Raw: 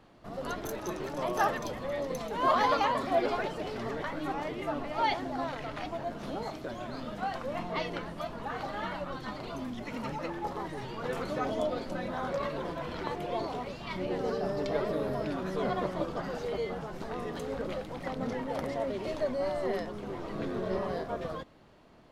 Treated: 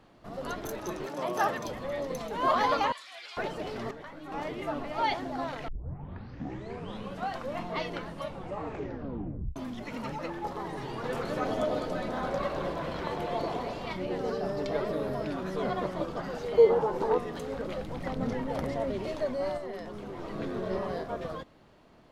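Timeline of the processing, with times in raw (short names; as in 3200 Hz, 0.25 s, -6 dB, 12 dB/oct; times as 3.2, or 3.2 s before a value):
1.05–1.67 HPF 210 Hz -> 61 Hz
2.92–3.37 Butterworth band-pass 5200 Hz, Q 0.66
3.91–4.32 gain -9 dB
5.68 tape start 1.60 s
8.11 tape stop 1.45 s
10.55–13.93 echo with dull and thin repeats by turns 0.103 s, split 1000 Hz, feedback 79%, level -4 dB
16.57–17.18 small resonant body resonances 460/880 Hz, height 16 dB, ringing for 20 ms
17.78–19.06 low shelf 180 Hz +8.5 dB
19.57–20.19 compressor 3:1, threshold -36 dBFS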